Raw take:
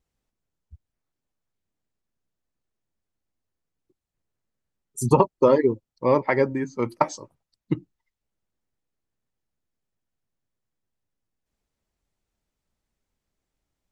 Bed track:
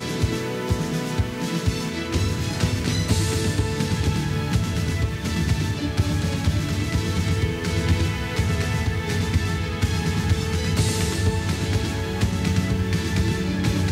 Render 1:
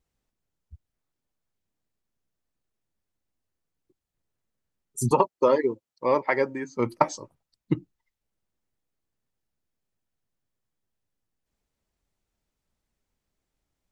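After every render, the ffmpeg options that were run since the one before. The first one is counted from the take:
-filter_complex "[0:a]asettb=1/sr,asplit=3[a][b][c];[a]atrim=end=5.114[d];[b]atrim=start=5.11:end=6.77,asetpts=PTS-STARTPTS,afade=t=in:d=0.004:c=qsin,afade=t=out:st=1.656:d=0.004:c=qsin,highpass=f=520:p=1[e];[c]atrim=start=6.766[f];[d][e]acrossfade=d=0.004:c1=hsin:c2=qsin[g];[g][f]acrossfade=d=0.004:c1=qsin:c2=hsin"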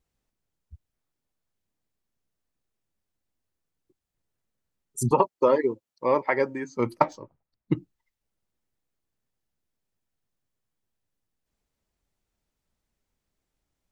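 -filter_complex "[0:a]asettb=1/sr,asplit=3[a][b][c];[a]atrim=end=5.034[d];[b]atrim=start=5.03:end=6.4,asetpts=PTS-STARTPTS,afade=t=in:d=0.004:c=qsin,afade=t=out:st=1.366:d=0.004:c=qsin,acrossover=split=3300[e][f];[f]acompressor=threshold=-54dB:ratio=4:attack=1:release=60[g];[e][g]amix=inputs=2:normalize=0[h];[c]atrim=start=6.396[i];[d][h]acrossfade=d=0.004:c1=hsin:c2=qsin[j];[j][i]acrossfade=d=0.004:c1=qsin:c2=hsin,asettb=1/sr,asplit=3[k][l][m];[k]atrim=end=7.024[n];[l]atrim=start=7.02:end=7.72,asetpts=PTS-STARTPTS,afade=t=in:d=0.004:c=qsin,afade=t=out:st=0.696:d=0.004:c=qsin,adynamicsmooth=sensitivity=3:basefreq=2.2k[o];[m]atrim=start=7.716[p];[n][o]acrossfade=d=0.004:c1=hsin:c2=qsin[q];[q][p]acrossfade=d=0.004:c1=qsin:c2=hsin"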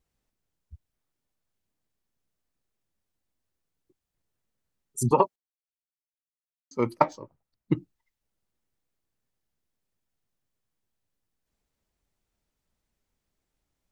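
-filter_complex "[0:a]asplit=3[a][b][c];[a]atrim=end=5.36,asetpts=PTS-STARTPTS,afade=t=out:st=5.356:d=0.004:c=hsin[d];[b]atrim=start=5.36:end=6.71,asetpts=PTS-STARTPTS,volume=0[e];[c]atrim=start=6.71,asetpts=PTS-STARTPTS,afade=t=in:d=0.004:c=hsin[f];[d][e][f]concat=n=3:v=0:a=1"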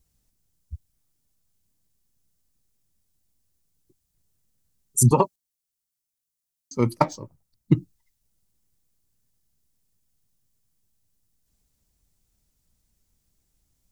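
-af "bass=f=250:g=11,treble=f=4k:g=13"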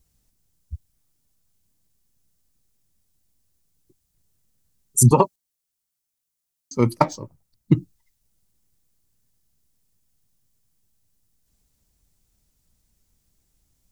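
-af "volume=3dB,alimiter=limit=-2dB:level=0:latency=1"

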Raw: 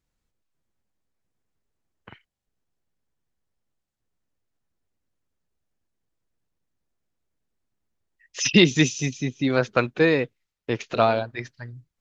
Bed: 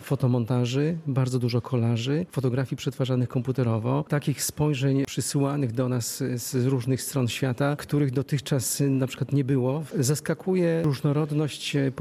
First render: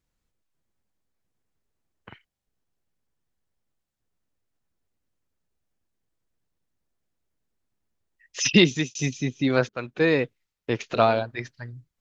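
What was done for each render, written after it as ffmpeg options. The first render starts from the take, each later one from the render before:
-filter_complex "[0:a]asplit=3[a][b][c];[a]atrim=end=8.95,asetpts=PTS-STARTPTS,afade=t=out:st=8.45:d=0.5:c=qsin[d];[b]atrim=start=8.95:end=9.69,asetpts=PTS-STARTPTS,afade=t=in:d=0.004:c=hsin,afade=t=out:st=0.736:d=0.004:c=hsin:silence=0.0630957[e];[c]atrim=start=9.69,asetpts=PTS-STARTPTS,afade=t=in:d=0.47:silence=0.0630957[f];[d][e][f]concat=n=3:v=0:a=1"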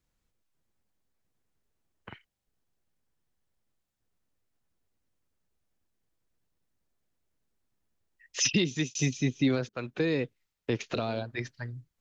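-filter_complex "[0:a]alimiter=limit=-14.5dB:level=0:latency=1:release=316,acrossover=split=430|3000[a][b][c];[b]acompressor=threshold=-35dB:ratio=6[d];[a][d][c]amix=inputs=3:normalize=0"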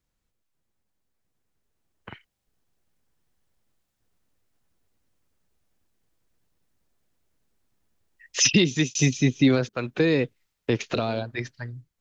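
-af "dynaudnorm=f=840:g=5:m=7dB"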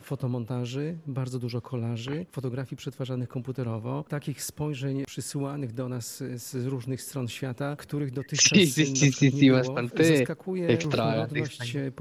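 -filter_complex "[1:a]volume=-7dB[a];[0:a][a]amix=inputs=2:normalize=0"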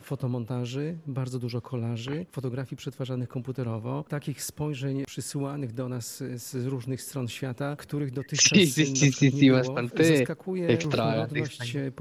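-af anull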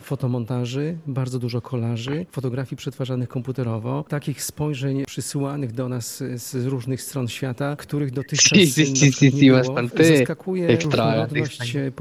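-af "volume=6.5dB,alimiter=limit=-3dB:level=0:latency=1"

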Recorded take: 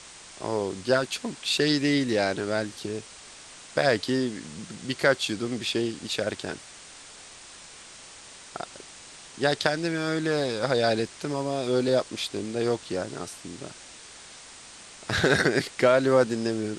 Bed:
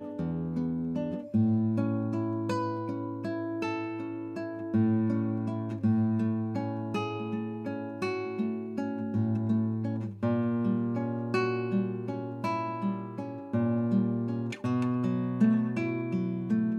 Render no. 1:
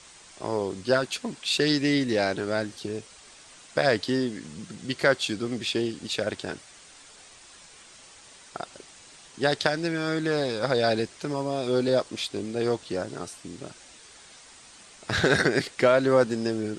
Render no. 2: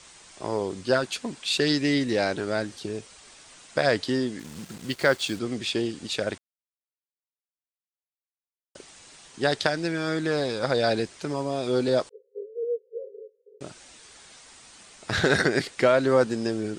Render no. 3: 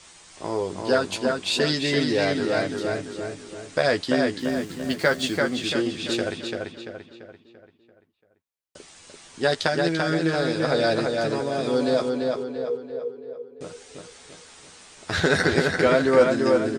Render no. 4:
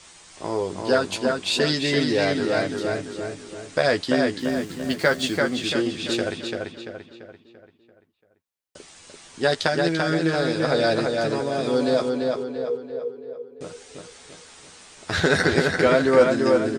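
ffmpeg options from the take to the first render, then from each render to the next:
-af "afftdn=nr=6:nf=-47"
-filter_complex "[0:a]asettb=1/sr,asplit=3[a][b][c];[a]atrim=end=4.394[d];[b]atrim=start=4.39:end=5.39,asetpts=PTS-STARTPTS,afade=t=in:d=0.004:c=qsin,afade=t=out:st=0.996:d=0.004:c=qsin,acrusher=bits=6:mix=0:aa=0.5[e];[c]atrim=start=5.386[f];[d][e]acrossfade=d=0.004:c1=hsin:c2=qsin[g];[g][f]acrossfade=d=0.004:c1=qsin:c2=hsin,asettb=1/sr,asplit=3[h][i][j];[h]atrim=end=12.094[k];[i]atrim=start=12.09:end=13.61,asetpts=PTS-STARTPTS,afade=t=in:d=0.004:c=qsin,afade=t=out:st=1.516:d=0.004:c=qsin,asuperpass=centerf=460:order=20:qfactor=3.2[l];[j]atrim=start=13.606[m];[k][l]acrossfade=d=0.004:c1=hsin:c2=qsin[n];[n][m]acrossfade=d=0.004:c1=qsin:c2=hsin,asplit=3[o][p][q];[o]atrim=end=6.38,asetpts=PTS-STARTPTS,afade=t=out:st=6.376:d=0.004:c=hsin[r];[p]atrim=start=6.38:end=8.75,asetpts=PTS-STARTPTS,volume=0[s];[q]atrim=start=8.75,asetpts=PTS-STARTPTS,afade=t=in:d=0.004:c=hsin[t];[r][s][t]concat=n=3:v=0:a=1"
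-filter_complex "[0:a]asplit=2[a][b];[b]adelay=12,volume=-6dB[c];[a][c]amix=inputs=2:normalize=0,asplit=2[d][e];[e]adelay=340,lowpass=f=4.1k:p=1,volume=-3dB,asplit=2[f][g];[g]adelay=340,lowpass=f=4.1k:p=1,volume=0.47,asplit=2[h][i];[i]adelay=340,lowpass=f=4.1k:p=1,volume=0.47,asplit=2[j][k];[k]adelay=340,lowpass=f=4.1k:p=1,volume=0.47,asplit=2[l][m];[m]adelay=340,lowpass=f=4.1k:p=1,volume=0.47,asplit=2[n][o];[o]adelay=340,lowpass=f=4.1k:p=1,volume=0.47[p];[d][f][h][j][l][n][p]amix=inputs=7:normalize=0"
-af "volume=1dB"

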